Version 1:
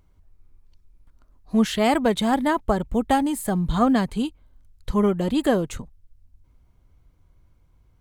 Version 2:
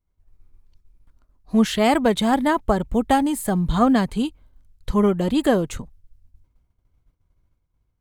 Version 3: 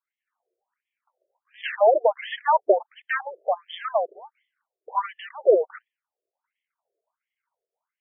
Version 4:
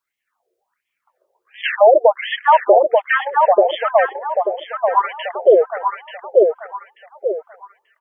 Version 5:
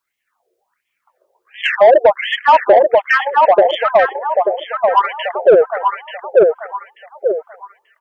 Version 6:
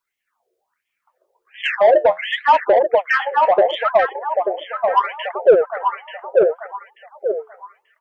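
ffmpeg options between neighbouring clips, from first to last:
ffmpeg -i in.wav -af "agate=range=-33dB:threshold=-47dB:ratio=3:detection=peak,volume=2dB" out.wav
ffmpeg -i in.wav -af "aeval=exprs='0.531*(cos(1*acos(clip(val(0)/0.531,-1,1)))-cos(1*PI/2))+0.0119*(cos(8*acos(clip(val(0)/0.531,-1,1)))-cos(8*PI/2))':channel_layout=same,afreqshift=-42,afftfilt=real='re*between(b*sr/1024,480*pow(2500/480,0.5+0.5*sin(2*PI*1.4*pts/sr))/1.41,480*pow(2500/480,0.5+0.5*sin(2*PI*1.4*pts/sr))*1.41)':imag='im*between(b*sr/1024,480*pow(2500/480,0.5+0.5*sin(2*PI*1.4*pts/sr))/1.41,480*pow(2500/480,0.5+0.5*sin(2*PI*1.4*pts/sr))*1.41)':win_size=1024:overlap=0.75,volume=5dB" out.wav
ffmpeg -i in.wav -filter_complex "[0:a]asplit=2[link_01][link_02];[link_02]adelay=886,lowpass=frequency=2200:poles=1,volume=-4dB,asplit=2[link_03][link_04];[link_04]adelay=886,lowpass=frequency=2200:poles=1,volume=0.35,asplit=2[link_05][link_06];[link_06]adelay=886,lowpass=frequency=2200:poles=1,volume=0.35,asplit=2[link_07][link_08];[link_08]adelay=886,lowpass=frequency=2200:poles=1,volume=0.35[link_09];[link_01][link_03][link_05][link_07][link_09]amix=inputs=5:normalize=0,alimiter=level_in=10.5dB:limit=-1dB:release=50:level=0:latency=1,volume=-1dB" out.wav
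ffmpeg -i in.wav -af "acontrast=40,volume=-1dB" out.wav
ffmpeg -i in.wav -af "flanger=delay=2:depth=9.7:regen=66:speed=0.73:shape=sinusoidal" out.wav

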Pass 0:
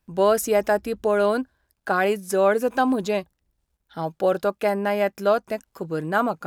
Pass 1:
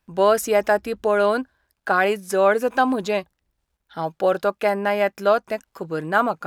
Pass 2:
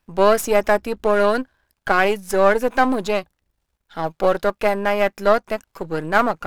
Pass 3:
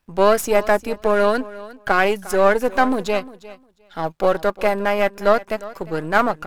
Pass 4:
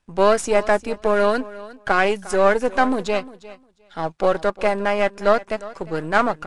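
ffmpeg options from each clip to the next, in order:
ffmpeg -i in.wav -af "equalizer=frequency=1700:width=0.31:gain=6,volume=-2dB" out.wav
ffmpeg -i in.wav -af "aeval=exprs='if(lt(val(0),0),0.447*val(0),val(0))':channel_layout=same,volume=4dB" out.wav
ffmpeg -i in.wav -af "aecho=1:1:354|708:0.126|0.0189" out.wav
ffmpeg -i in.wav -af "volume=-1dB" -ar 22050 -c:a libvorbis -b:a 48k out.ogg

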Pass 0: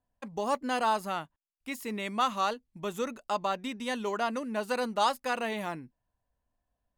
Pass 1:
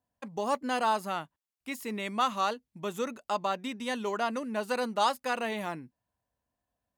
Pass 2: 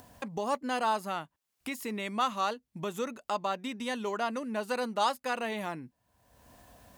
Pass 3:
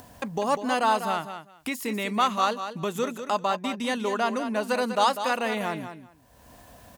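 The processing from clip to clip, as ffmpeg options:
ffmpeg -i in.wav -af "highpass=83" out.wav
ffmpeg -i in.wav -af "acompressor=mode=upward:threshold=-30dB:ratio=2.5,volume=-1.5dB" out.wav
ffmpeg -i in.wav -af "aecho=1:1:196|392:0.335|0.0569,volume=6dB" out.wav

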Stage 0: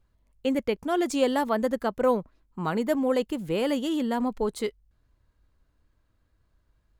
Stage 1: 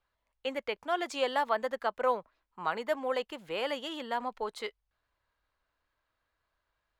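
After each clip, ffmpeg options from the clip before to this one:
ffmpeg -i in.wav -filter_complex "[0:a]acrossover=split=570 4800:gain=0.1 1 0.224[link_01][link_02][link_03];[link_01][link_02][link_03]amix=inputs=3:normalize=0" out.wav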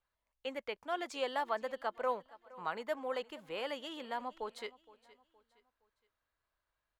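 ffmpeg -i in.wav -af "aecho=1:1:467|934|1401:0.0944|0.0359|0.0136,volume=-6dB" out.wav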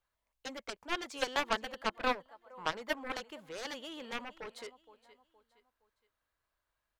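ffmpeg -i in.wav -af "aeval=exprs='0.1*(cos(1*acos(clip(val(0)/0.1,-1,1)))-cos(1*PI/2))+0.0251*(cos(7*acos(clip(val(0)/0.1,-1,1)))-cos(7*PI/2))':channel_layout=same,volume=3.5dB" out.wav

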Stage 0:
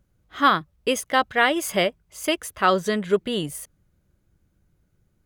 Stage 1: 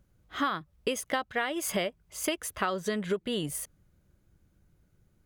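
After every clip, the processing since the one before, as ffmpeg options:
ffmpeg -i in.wav -af "acompressor=threshold=-26dB:ratio=12" out.wav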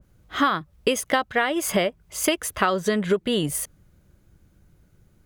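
ffmpeg -i in.wav -af "adynamicequalizer=threshold=0.00794:dfrequency=2100:dqfactor=0.7:tfrequency=2100:tqfactor=0.7:attack=5:release=100:ratio=0.375:range=2:mode=cutabove:tftype=highshelf,volume=8.5dB" out.wav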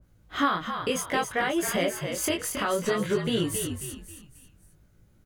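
ffmpeg -i in.wav -filter_complex "[0:a]alimiter=limit=-13dB:level=0:latency=1:release=58,asplit=2[link_01][link_02];[link_02]asplit=4[link_03][link_04][link_05][link_06];[link_03]adelay=270,afreqshift=-51,volume=-7dB[link_07];[link_04]adelay=540,afreqshift=-102,volume=-15.4dB[link_08];[link_05]adelay=810,afreqshift=-153,volume=-23.8dB[link_09];[link_06]adelay=1080,afreqshift=-204,volume=-32.2dB[link_10];[link_07][link_08][link_09][link_10]amix=inputs=4:normalize=0[link_11];[link_01][link_11]amix=inputs=2:normalize=0,flanger=delay=17.5:depth=6.6:speed=0.59" out.wav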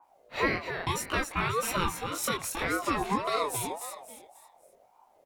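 ffmpeg -i in.wav -af "aeval=exprs='val(0)*sin(2*PI*720*n/s+720*0.25/1.8*sin(2*PI*1.8*n/s))':channel_layout=same" out.wav

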